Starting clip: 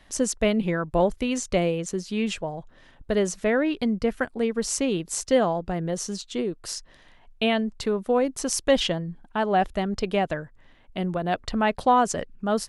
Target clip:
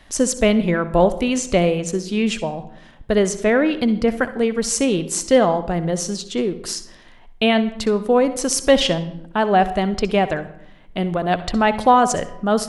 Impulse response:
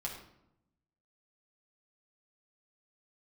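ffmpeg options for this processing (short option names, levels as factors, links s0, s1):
-filter_complex "[0:a]asplit=2[s0][s1];[1:a]atrim=start_sample=2205,adelay=62[s2];[s1][s2]afir=irnorm=-1:irlink=0,volume=0.237[s3];[s0][s3]amix=inputs=2:normalize=0,volume=2"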